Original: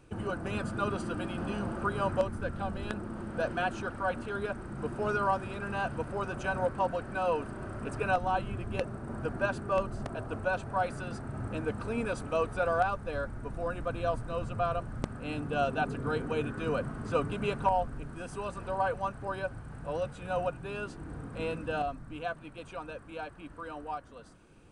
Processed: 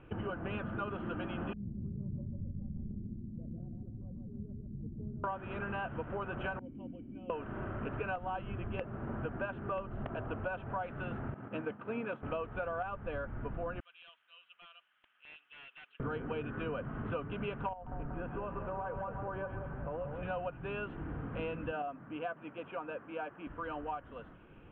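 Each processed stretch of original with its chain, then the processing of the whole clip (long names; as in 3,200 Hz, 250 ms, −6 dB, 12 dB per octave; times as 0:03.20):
0:01.53–0:05.24: transistor ladder low-pass 240 Hz, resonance 25% + repeating echo 148 ms, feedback 40%, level −4 dB
0:06.59–0:07.30: formant resonators in series i + parametric band 1,900 Hz −8.5 dB 2.4 octaves
0:11.34–0:12.23: high-pass filter 140 Hz 24 dB per octave + downward expander −34 dBFS
0:13.80–0:16.00: four-pole ladder band-pass 3,700 Hz, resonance 50% + high-shelf EQ 4,300 Hz +3 dB + wrap-around overflow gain 44.5 dB
0:17.73–0:20.23: low-pass filter 1,600 Hz + downward compressor 10 to 1, threshold −35 dBFS + echo with a time of its own for lows and highs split 890 Hz, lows 187 ms, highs 134 ms, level −6.5 dB
0:21.71–0:23.47: high-pass filter 200 Hz + parametric band 6,200 Hz −14.5 dB 1.3 octaves
whole clip: elliptic low-pass filter 3,100 Hz, stop band 40 dB; downward compressor 6 to 1, threshold −38 dBFS; level +3 dB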